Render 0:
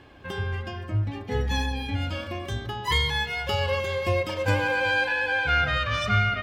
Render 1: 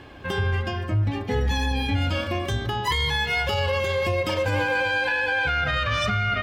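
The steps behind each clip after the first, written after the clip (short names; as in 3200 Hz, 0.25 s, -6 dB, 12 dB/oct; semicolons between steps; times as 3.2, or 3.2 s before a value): limiter -22 dBFS, peak gain reduction 11 dB; gain +6.5 dB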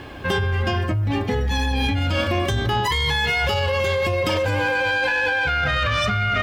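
in parallel at +2 dB: negative-ratio compressor -26 dBFS, ratio -0.5; on the sum: soft clip -10 dBFS, distortion -23 dB; requantised 10-bit, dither none; gain -1.5 dB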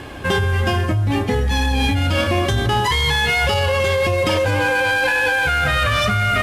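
CVSD 64 kbps; on a send at -20.5 dB: reverb RT60 0.35 s, pre-delay 0.204 s; on the sum: gain +3.5 dB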